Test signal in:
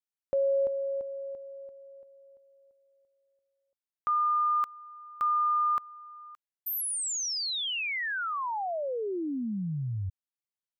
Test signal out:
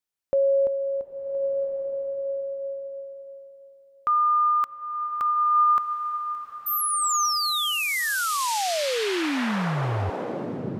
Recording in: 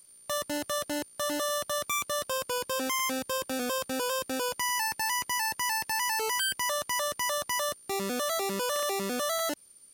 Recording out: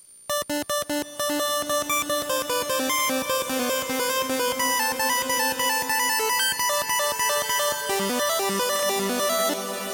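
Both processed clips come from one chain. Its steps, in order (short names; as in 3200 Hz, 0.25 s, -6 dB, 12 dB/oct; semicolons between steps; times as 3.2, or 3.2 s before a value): bloom reverb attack 1.45 s, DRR 4.5 dB; gain +5.5 dB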